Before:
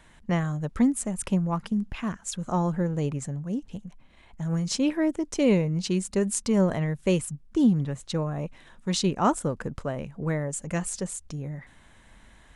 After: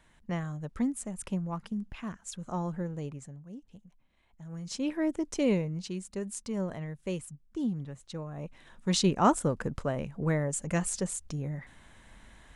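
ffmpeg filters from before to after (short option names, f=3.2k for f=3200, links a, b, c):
-af "volume=14.5dB,afade=t=out:st=2.8:d=0.63:silence=0.446684,afade=t=in:st=4.53:d=0.68:silence=0.251189,afade=t=out:st=5.21:d=0.72:silence=0.398107,afade=t=in:st=8.29:d=0.62:silence=0.298538"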